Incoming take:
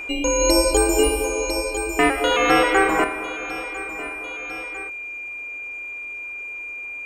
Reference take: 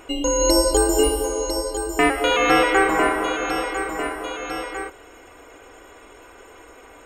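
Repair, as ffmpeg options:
ffmpeg -i in.wav -af "bandreject=frequency=2400:width=30,asetnsamples=nb_out_samples=441:pad=0,asendcmd='3.04 volume volume 7.5dB',volume=0dB" out.wav

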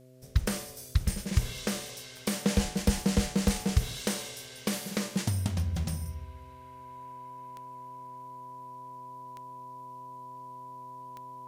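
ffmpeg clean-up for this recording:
ffmpeg -i in.wav -af "adeclick=threshold=4,bandreject=frequency=128.1:width_type=h:width=4,bandreject=frequency=256.2:width_type=h:width=4,bandreject=frequency=384.3:width_type=h:width=4,bandreject=frequency=512.4:width_type=h:width=4,bandreject=frequency=640.5:width_type=h:width=4,bandreject=frequency=990:width=30,agate=range=-21dB:threshold=-39dB" out.wav

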